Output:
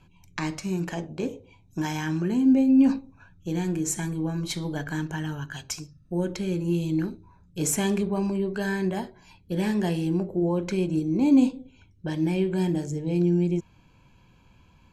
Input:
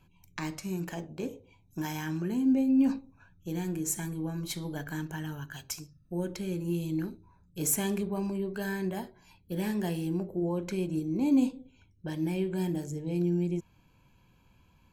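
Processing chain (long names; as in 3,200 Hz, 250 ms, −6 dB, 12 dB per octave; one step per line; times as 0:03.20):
low-pass filter 7,900 Hz 12 dB per octave
level +6 dB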